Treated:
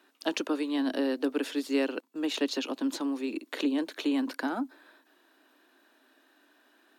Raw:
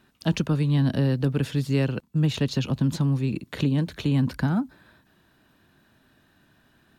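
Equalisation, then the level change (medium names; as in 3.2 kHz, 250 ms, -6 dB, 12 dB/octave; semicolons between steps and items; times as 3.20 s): elliptic high-pass 280 Hz, stop band 50 dB; 0.0 dB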